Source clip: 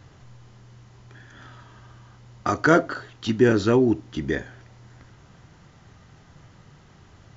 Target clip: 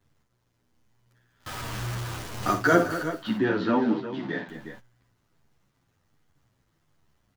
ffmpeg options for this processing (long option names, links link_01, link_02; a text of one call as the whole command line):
ffmpeg -i in.wav -filter_complex "[0:a]asettb=1/sr,asplit=3[link_01][link_02][link_03];[link_01]atrim=end=1.464[link_04];[link_02]atrim=start=1.46:end=2.53,asetpts=PTS-STARTPTS,afade=type=in:duration=0.004:curve=qsin,afade=type=out:start_time=1.066:duration=0.004:curve=qsin,aeval=exprs='val(0)+0.5*0.0355*sgn(val(0))':channel_layout=same[link_05];[link_03]atrim=start=2.526[link_06];[link_04][link_05]acrossfade=duration=0.004:curve1=hsin:curve2=qsin[link_07];[link_07][link_06]acrossfade=duration=0.004:curve1=qsin:curve2=hsin,acrusher=bits=7:dc=4:mix=0:aa=0.000001,asettb=1/sr,asplit=3[link_08][link_09][link_10];[link_08]atrim=end=3.114[link_11];[link_09]atrim=start=3.11:end=4.49,asetpts=PTS-STARTPTS,afade=type=in:duration=0.004:curve=qsin,afade=type=out:start_time=1.376:duration=0.004:curve=qsin,highpass=frequency=160:width=0.5412,highpass=frequency=160:width=1.3066,equalizer=frequency=170:width_type=q:width=4:gain=5,equalizer=frequency=380:width_type=q:width=4:gain=-8,equalizer=frequency=920:width_type=q:width=4:gain=6,equalizer=frequency=2500:width_type=q:width=4:gain=-4,lowpass=frequency=3800:width=0.5412,lowpass=frequency=3800:width=1.3066[link_12];[link_10]atrim=start=4.486[link_13];[link_11][link_12]acrossfade=duration=0.004:curve1=hsin:curve2=qsin[link_14];[link_14][link_13]acrossfade=duration=0.004:curve1=qsin:curve2=hsin,aecho=1:1:56|210|358:0.335|0.211|0.266,agate=range=-14dB:threshold=-42dB:ratio=16:detection=peak,asplit=2[link_15][link_16];[link_16]adelay=9.9,afreqshift=-1.3[link_17];[link_15][link_17]amix=inputs=2:normalize=1" out.wav